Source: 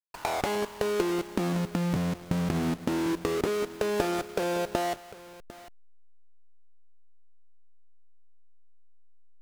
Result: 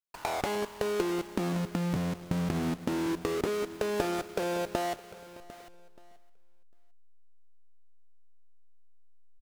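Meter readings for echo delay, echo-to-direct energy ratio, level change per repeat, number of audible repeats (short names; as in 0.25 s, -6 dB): 0.614 s, -21.5 dB, -5.5 dB, 2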